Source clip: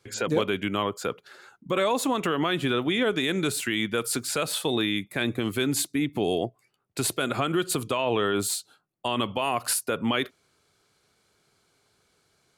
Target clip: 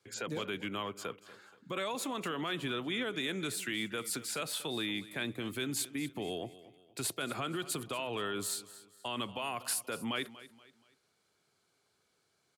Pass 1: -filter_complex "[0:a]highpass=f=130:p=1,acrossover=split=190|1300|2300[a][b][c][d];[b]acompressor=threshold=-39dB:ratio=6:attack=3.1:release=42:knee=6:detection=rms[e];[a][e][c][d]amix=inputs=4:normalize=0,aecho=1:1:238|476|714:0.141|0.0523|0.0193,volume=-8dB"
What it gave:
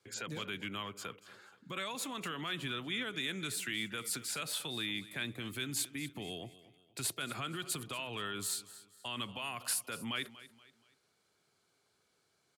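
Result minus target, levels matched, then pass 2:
compressor: peak gain reduction +9 dB
-filter_complex "[0:a]highpass=f=130:p=1,acrossover=split=190|1300|2300[a][b][c][d];[b]acompressor=threshold=-28dB:ratio=6:attack=3.1:release=42:knee=6:detection=rms[e];[a][e][c][d]amix=inputs=4:normalize=0,aecho=1:1:238|476|714:0.141|0.0523|0.0193,volume=-8dB"

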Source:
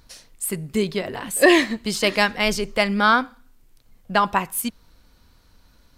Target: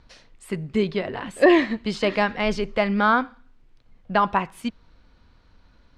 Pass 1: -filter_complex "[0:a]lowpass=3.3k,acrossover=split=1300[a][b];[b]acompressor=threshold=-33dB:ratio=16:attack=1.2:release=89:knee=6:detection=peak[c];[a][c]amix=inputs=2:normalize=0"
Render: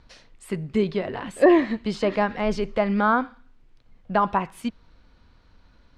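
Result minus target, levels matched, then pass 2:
compressor: peak gain reduction +10.5 dB
-filter_complex "[0:a]lowpass=3.3k,acrossover=split=1300[a][b];[b]acompressor=threshold=-22dB:ratio=16:attack=1.2:release=89:knee=6:detection=peak[c];[a][c]amix=inputs=2:normalize=0"

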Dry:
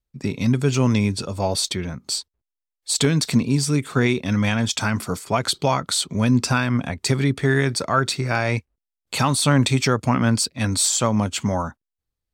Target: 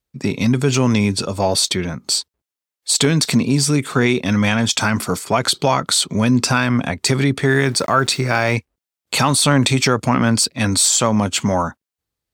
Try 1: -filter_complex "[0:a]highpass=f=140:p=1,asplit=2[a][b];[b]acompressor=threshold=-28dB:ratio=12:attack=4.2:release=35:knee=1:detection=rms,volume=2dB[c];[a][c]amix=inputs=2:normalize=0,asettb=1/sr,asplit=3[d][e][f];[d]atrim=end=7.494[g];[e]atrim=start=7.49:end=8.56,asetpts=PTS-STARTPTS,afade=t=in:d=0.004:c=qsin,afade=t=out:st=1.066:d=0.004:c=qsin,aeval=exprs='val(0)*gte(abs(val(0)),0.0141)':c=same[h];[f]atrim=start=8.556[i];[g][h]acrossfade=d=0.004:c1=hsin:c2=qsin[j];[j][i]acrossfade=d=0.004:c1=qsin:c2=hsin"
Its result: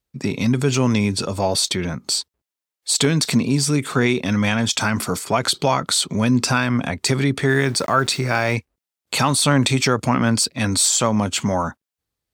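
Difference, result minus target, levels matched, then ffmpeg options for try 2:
compressor: peak gain reduction +7 dB
-filter_complex "[0:a]highpass=f=140:p=1,asplit=2[a][b];[b]acompressor=threshold=-20.5dB:ratio=12:attack=4.2:release=35:knee=1:detection=rms,volume=2dB[c];[a][c]amix=inputs=2:normalize=0,asettb=1/sr,asplit=3[d][e][f];[d]atrim=end=7.494[g];[e]atrim=start=7.49:end=8.56,asetpts=PTS-STARTPTS,afade=t=in:d=0.004:c=qsin,afade=t=out:st=1.066:d=0.004:c=qsin,aeval=exprs='val(0)*gte(abs(val(0)),0.0141)':c=same[h];[f]atrim=start=8.556[i];[g][h]acrossfade=d=0.004:c1=hsin:c2=qsin[j];[j][i]acrossfade=d=0.004:c1=qsin:c2=hsin"

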